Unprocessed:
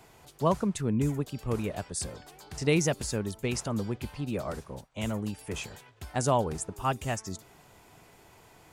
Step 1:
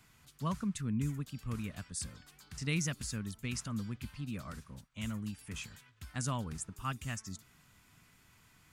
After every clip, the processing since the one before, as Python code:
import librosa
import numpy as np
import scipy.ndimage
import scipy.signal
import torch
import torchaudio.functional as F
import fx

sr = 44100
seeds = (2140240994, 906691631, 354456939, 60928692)

y = fx.band_shelf(x, sr, hz=550.0, db=-13.5, octaves=1.7)
y = F.gain(torch.from_numpy(y), -5.5).numpy()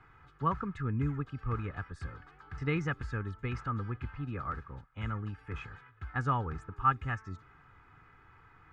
y = fx.lowpass_res(x, sr, hz=1400.0, q=2.3)
y = y + 0.63 * np.pad(y, (int(2.4 * sr / 1000.0), 0))[:len(y)]
y = F.gain(torch.from_numpy(y), 4.0).numpy()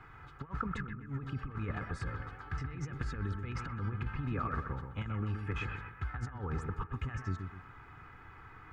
y = fx.over_compress(x, sr, threshold_db=-38.0, ratio=-0.5)
y = fx.echo_bbd(y, sr, ms=127, stages=2048, feedback_pct=37, wet_db=-6.0)
y = F.gain(torch.from_numpy(y), 1.0).numpy()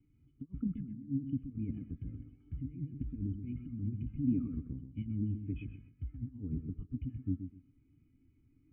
y = fx.formant_cascade(x, sr, vowel='i')
y = fx.spectral_expand(y, sr, expansion=1.5)
y = F.gain(torch.from_numpy(y), 12.5).numpy()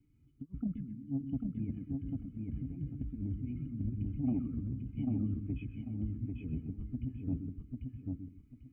y = 10.0 ** (-23.5 / 20.0) * np.tanh(x / 10.0 ** (-23.5 / 20.0))
y = fx.echo_feedback(y, sr, ms=794, feedback_pct=25, wet_db=-3.0)